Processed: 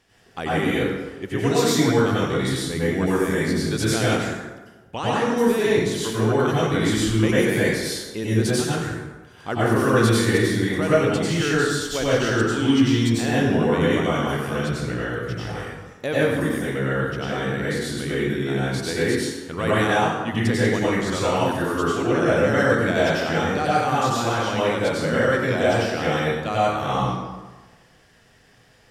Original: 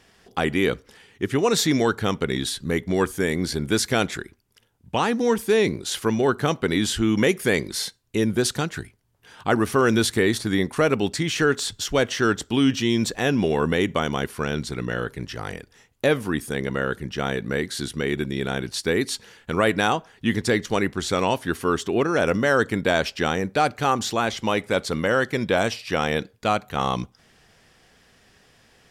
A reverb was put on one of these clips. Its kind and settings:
dense smooth reverb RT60 1.2 s, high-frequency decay 0.6×, pre-delay 80 ms, DRR −8 dB
level −7.5 dB

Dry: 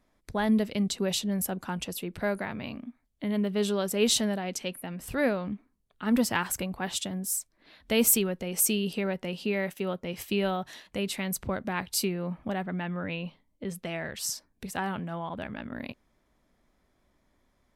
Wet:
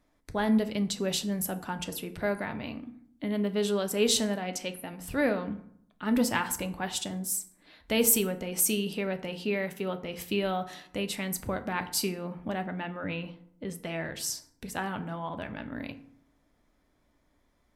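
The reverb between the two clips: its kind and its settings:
feedback delay network reverb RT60 0.67 s, low-frequency decay 1.25×, high-frequency decay 0.55×, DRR 8 dB
level −1 dB

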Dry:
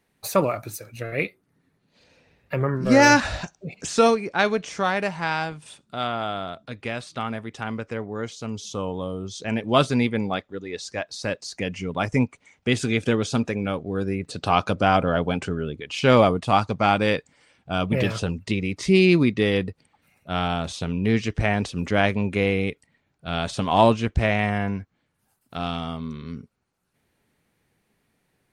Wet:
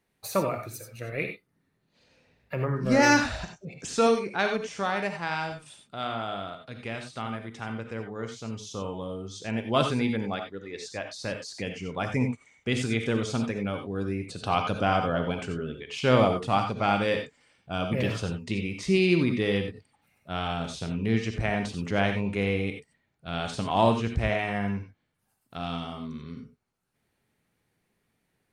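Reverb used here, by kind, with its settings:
reverb whose tail is shaped and stops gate 110 ms rising, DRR 5 dB
level −6 dB

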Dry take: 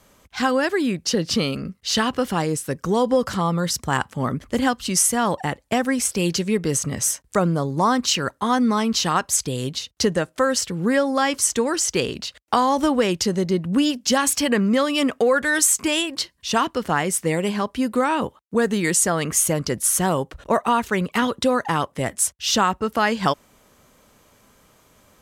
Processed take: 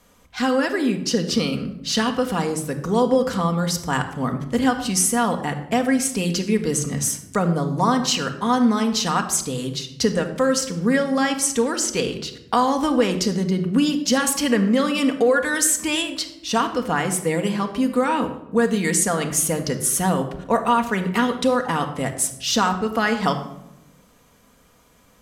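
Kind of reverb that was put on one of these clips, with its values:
rectangular room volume 2,800 cubic metres, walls furnished, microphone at 1.8 metres
level −2 dB

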